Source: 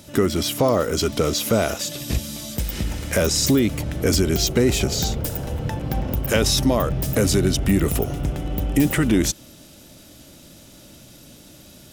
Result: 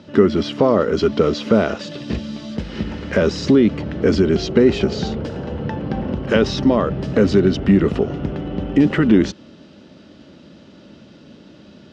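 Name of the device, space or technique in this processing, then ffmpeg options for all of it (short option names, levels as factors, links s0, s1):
guitar cabinet: -af "highpass=97,equalizer=f=120:t=q:w=4:g=-7,equalizer=f=210:t=q:w=4:g=5,equalizer=f=410:t=q:w=4:g=4,equalizer=f=720:t=q:w=4:g=-4,equalizer=f=2300:t=q:w=4:g=-6,equalizer=f=3600:t=q:w=4:g=-6,lowpass=f=3900:w=0.5412,lowpass=f=3900:w=1.3066,volume=1.5"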